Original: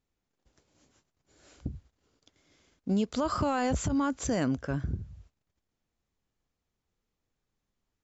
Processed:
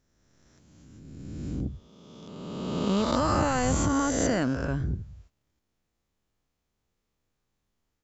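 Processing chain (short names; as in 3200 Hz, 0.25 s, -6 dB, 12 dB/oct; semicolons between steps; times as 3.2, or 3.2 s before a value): spectral swells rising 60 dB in 1.98 s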